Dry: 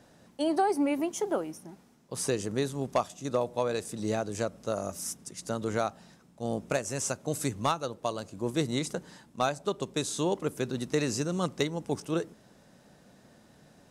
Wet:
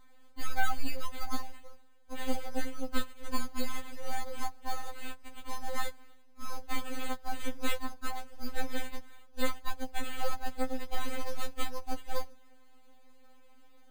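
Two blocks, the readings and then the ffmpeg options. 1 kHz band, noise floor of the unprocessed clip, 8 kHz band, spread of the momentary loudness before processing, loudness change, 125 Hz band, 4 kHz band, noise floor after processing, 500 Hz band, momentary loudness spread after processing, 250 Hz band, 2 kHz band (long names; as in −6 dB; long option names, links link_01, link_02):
−4.5 dB, −60 dBFS, −9.5 dB, 7 LU, −8.0 dB, −11.5 dB, −3.5 dB, −53 dBFS, −12.0 dB, 9 LU, −10.0 dB, −0.5 dB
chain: -af "acrusher=samples=8:mix=1:aa=0.000001,aeval=exprs='abs(val(0))':channel_layout=same,afftfilt=real='re*3.46*eq(mod(b,12),0)':imag='im*3.46*eq(mod(b,12),0)':win_size=2048:overlap=0.75,volume=-1dB"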